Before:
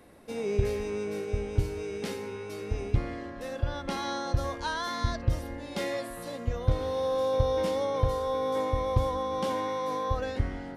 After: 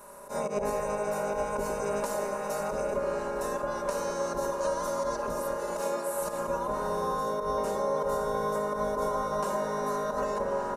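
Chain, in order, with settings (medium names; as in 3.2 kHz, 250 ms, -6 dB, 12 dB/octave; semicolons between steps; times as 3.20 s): spectral peaks clipped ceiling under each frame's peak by 25 dB; band-stop 3.3 kHz, Q 6.7; small resonant body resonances 560/960 Hz, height 17 dB, ringing for 50 ms; slow attack 103 ms; in parallel at -11.5 dB: saturation -24 dBFS, distortion -12 dB; 5.56–6.22 s: on the sum: high-pass 190 Hz; on a send at -11.5 dB: reverberation RT60 5.4 s, pre-delay 102 ms; on the sum: compression, threshold -30 dBFS, peak gain reduction 13 dB; high-order bell 3.1 kHz -12.5 dB; comb 4.9 ms, depth 82%; repeats whose band climbs or falls 106 ms, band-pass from 360 Hz, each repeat 0.7 oct, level -1 dB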